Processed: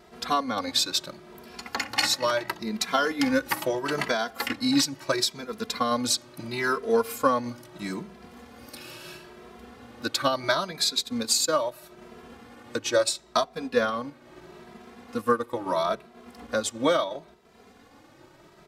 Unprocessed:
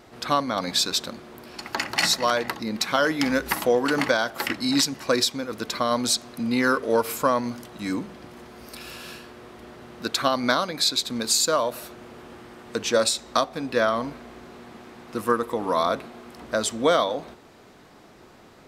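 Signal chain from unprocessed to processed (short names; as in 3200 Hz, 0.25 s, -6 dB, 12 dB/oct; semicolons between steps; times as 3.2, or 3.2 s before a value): transient shaper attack +2 dB, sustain -3 dB, from 10.99 s sustain -8 dB; endless flanger 2.6 ms +0.75 Hz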